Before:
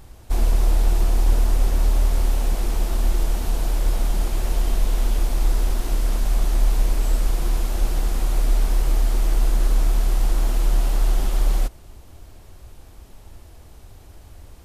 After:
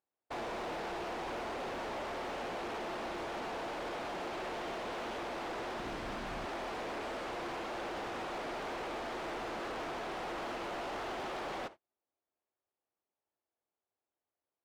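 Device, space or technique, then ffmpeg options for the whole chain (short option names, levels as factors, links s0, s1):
walkie-talkie: -filter_complex "[0:a]highpass=410,lowpass=2300,asoftclip=type=hard:threshold=0.0119,agate=range=0.01:threshold=0.00355:ratio=16:detection=peak,asplit=3[s0][s1][s2];[s0]afade=t=out:st=5.78:d=0.02[s3];[s1]asubboost=boost=3:cutoff=230,afade=t=in:st=5.78:d=0.02,afade=t=out:st=6.44:d=0.02[s4];[s2]afade=t=in:st=6.44:d=0.02[s5];[s3][s4][s5]amix=inputs=3:normalize=0,volume=1.19"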